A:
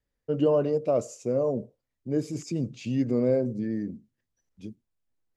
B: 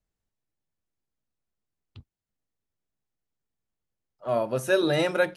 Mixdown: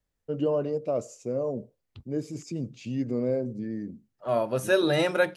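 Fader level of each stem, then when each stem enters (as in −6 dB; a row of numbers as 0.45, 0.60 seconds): −3.5, 0.0 decibels; 0.00, 0.00 seconds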